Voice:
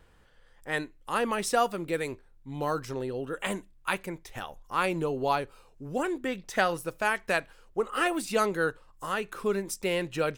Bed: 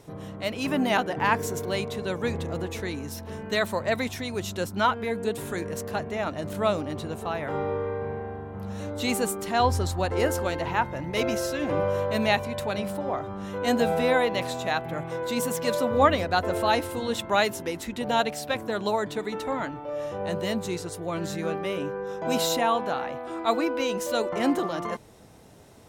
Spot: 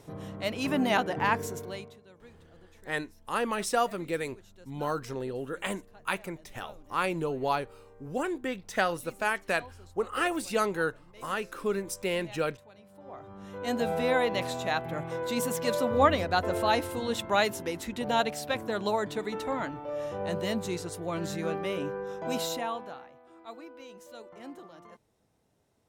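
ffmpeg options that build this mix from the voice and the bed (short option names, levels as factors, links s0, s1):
-filter_complex "[0:a]adelay=2200,volume=0.841[s0];[1:a]volume=11.2,afade=t=out:st=1.18:d=0.82:silence=0.0668344,afade=t=in:st=12.9:d=1.42:silence=0.0707946,afade=t=out:st=21.9:d=1.2:silence=0.125893[s1];[s0][s1]amix=inputs=2:normalize=0"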